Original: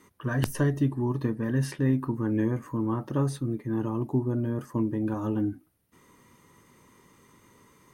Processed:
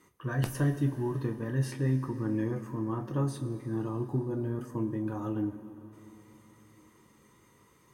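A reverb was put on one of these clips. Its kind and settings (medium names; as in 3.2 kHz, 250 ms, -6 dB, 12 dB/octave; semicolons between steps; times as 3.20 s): two-slope reverb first 0.2 s, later 3.9 s, from -19 dB, DRR 3.5 dB; trim -5.5 dB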